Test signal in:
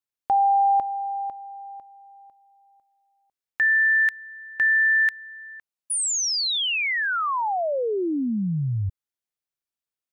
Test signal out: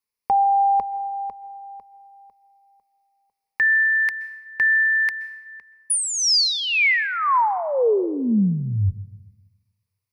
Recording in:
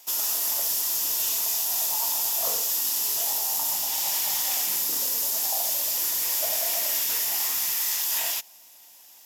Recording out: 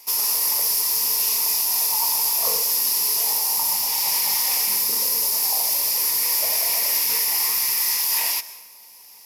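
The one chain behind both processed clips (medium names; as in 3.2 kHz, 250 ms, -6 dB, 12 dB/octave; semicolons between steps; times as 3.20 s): rippled EQ curve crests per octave 0.87, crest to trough 10 dB; plate-style reverb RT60 1.2 s, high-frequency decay 0.7×, pre-delay 115 ms, DRR 15.5 dB; trim +3 dB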